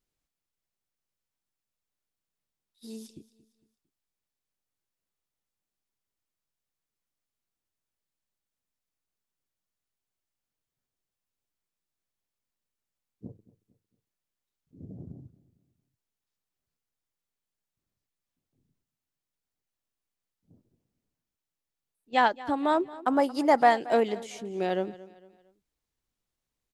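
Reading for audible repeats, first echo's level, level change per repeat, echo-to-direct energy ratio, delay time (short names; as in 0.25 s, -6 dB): 3, -19.0 dB, -8.0 dB, -18.5 dB, 0.227 s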